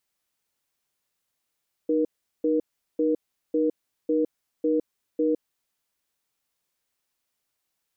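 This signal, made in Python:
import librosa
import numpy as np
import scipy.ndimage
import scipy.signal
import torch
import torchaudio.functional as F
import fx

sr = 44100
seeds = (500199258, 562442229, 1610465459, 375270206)

y = fx.cadence(sr, length_s=3.7, low_hz=308.0, high_hz=477.0, on_s=0.16, off_s=0.39, level_db=-22.5)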